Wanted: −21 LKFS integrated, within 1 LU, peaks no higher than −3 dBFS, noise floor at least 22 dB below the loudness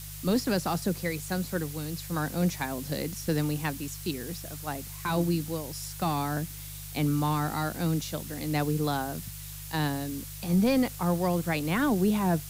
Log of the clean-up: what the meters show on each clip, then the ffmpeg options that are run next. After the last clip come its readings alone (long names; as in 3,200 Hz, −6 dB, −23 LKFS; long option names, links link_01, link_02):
mains hum 50 Hz; hum harmonics up to 150 Hz; level of the hum −41 dBFS; background noise floor −41 dBFS; target noise floor −52 dBFS; integrated loudness −29.5 LKFS; sample peak −15.5 dBFS; target loudness −21.0 LKFS
→ -af "bandreject=frequency=50:width_type=h:width=4,bandreject=frequency=100:width_type=h:width=4,bandreject=frequency=150:width_type=h:width=4"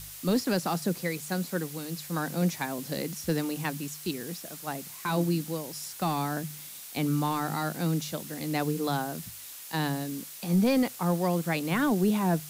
mains hum none found; background noise floor −44 dBFS; target noise floor −52 dBFS
→ -af "afftdn=noise_reduction=8:noise_floor=-44"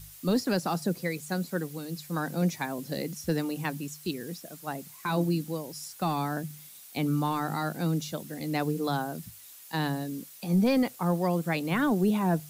background noise floor −49 dBFS; target noise floor −52 dBFS
→ -af "afftdn=noise_reduction=6:noise_floor=-49"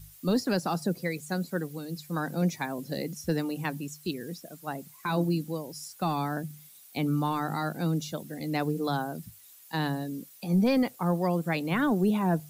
background noise floor −53 dBFS; integrated loudness −30.5 LKFS; sample peak −15.5 dBFS; target loudness −21.0 LKFS
→ -af "volume=9.5dB"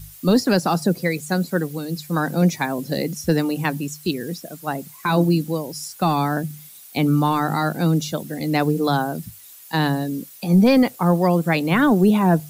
integrated loudness −21.0 LKFS; sample peak −6.0 dBFS; background noise floor −44 dBFS